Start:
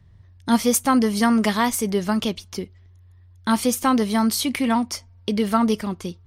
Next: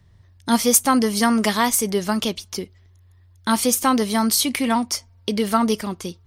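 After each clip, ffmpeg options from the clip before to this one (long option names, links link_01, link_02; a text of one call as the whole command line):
ffmpeg -i in.wav -af "bass=frequency=250:gain=-4,treble=frequency=4000:gain=5,volume=1.5dB" out.wav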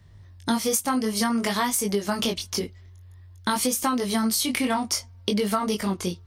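ffmpeg -i in.wav -af "flanger=delay=19.5:depth=4.1:speed=0.54,acompressor=threshold=-26dB:ratio=10,volume=5.5dB" out.wav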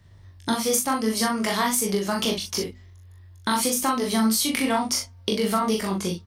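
ffmpeg -i in.wav -filter_complex "[0:a]bandreject=frequency=50:width_type=h:width=6,bandreject=frequency=100:width_type=h:width=6,bandreject=frequency=150:width_type=h:width=6,bandreject=frequency=200:width_type=h:width=6,bandreject=frequency=250:width_type=h:width=6,asplit=2[link_01][link_02];[link_02]adelay=41,volume=-3.5dB[link_03];[link_01][link_03]amix=inputs=2:normalize=0" out.wav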